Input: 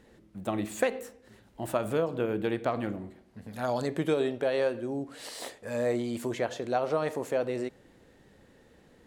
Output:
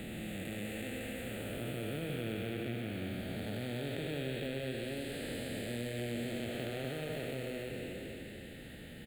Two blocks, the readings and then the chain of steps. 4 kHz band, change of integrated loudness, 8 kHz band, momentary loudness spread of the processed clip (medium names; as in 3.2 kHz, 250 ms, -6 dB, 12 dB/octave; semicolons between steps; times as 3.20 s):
0.0 dB, -8.5 dB, -5.0 dB, 5 LU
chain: spectral blur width 936 ms; amplifier tone stack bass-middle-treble 5-5-5; in parallel at -5 dB: sample-and-hold 18×; on the sum: static phaser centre 2.5 kHz, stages 4; on a send: loudspeakers at several distances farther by 26 m -10 dB, 59 m -9 dB; on the sum: three bands compressed up and down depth 70%; trim +12 dB